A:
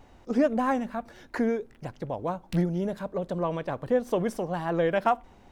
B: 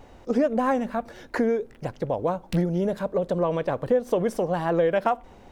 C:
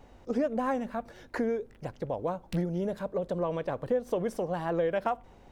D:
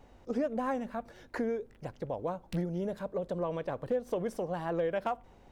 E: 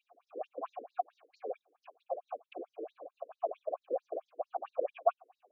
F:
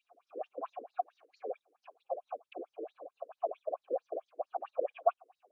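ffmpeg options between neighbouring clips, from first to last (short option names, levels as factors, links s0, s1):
-af "equalizer=f=500:t=o:w=0.63:g=5,acompressor=threshold=0.0562:ratio=2.5,volume=1.68"
-af "aeval=exprs='val(0)+0.00224*(sin(2*PI*50*n/s)+sin(2*PI*2*50*n/s)/2+sin(2*PI*3*50*n/s)/3+sin(2*PI*4*50*n/s)/4+sin(2*PI*5*50*n/s)/5)':c=same,volume=0.473"
-af "asoftclip=type=hard:threshold=0.1,volume=0.708"
-filter_complex "[0:a]afftfilt=real='hypot(re,im)*cos(2*PI*random(0))':imag='hypot(re,im)*sin(2*PI*random(1))':win_size=512:overlap=0.75,asplit=3[s0][s1][s2];[s0]bandpass=f=730:t=q:w=8,volume=1[s3];[s1]bandpass=f=1090:t=q:w=8,volume=0.501[s4];[s2]bandpass=f=2440:t=q:w=8,volume=0.355[s5];[s3][s4][s5]amix=inputs=3:normalize=0,afftfilt=real='re*between(b*sr/1024,360*pow(5400/360,0.5+0.5*sin(2*PI*4.5*pts/sr))/1.41,360*pow(5400/360,0.5+0.5*sin(2*PI*4.5*pts/sr))*1.41)':imag='im*between(b*sr/1024,360*pow(5400/360,0.5+0.5*sin(2*PI*4.5*pts/sr))/1.41,360*pow(5400/360,0.5+0.5*sin(2*PI*4.5*pts/sr))*1.41)':win_size=1024:overlap=0.75,volume=7.5"
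-ar 24000 -c:a aac -b:a 96k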